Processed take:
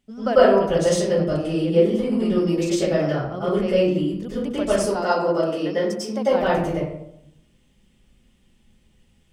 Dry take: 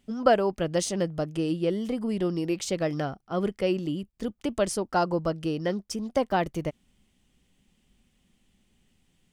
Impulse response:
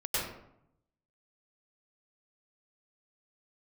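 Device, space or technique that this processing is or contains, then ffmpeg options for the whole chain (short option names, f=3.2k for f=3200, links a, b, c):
bathroom: -filter_complex "[0:a]asettb=1/sr,asplit=3[a][b][c];[a]atrim=end=4.764[d];[b]atrim=start=4.76:end=6.29,asetpts=PTS-STARTPTS,afade=t=in:d=0.004:c=qsin,afade=t=out:st=1.526:d=0.004:c=qsin,highpass=240[e];[c]atrim=start=6.286[f];[d][e]acrossfade=d=0.004:c1=hsin:c2=qsin[g];[g][f]acrossfade=d=0.004:c1=qsin:c2=hsin[h];[1:a]atrim=start_sample=2205[i];[h][i]afir=irnorm=-1:irlink=0,volume=-1.5dB"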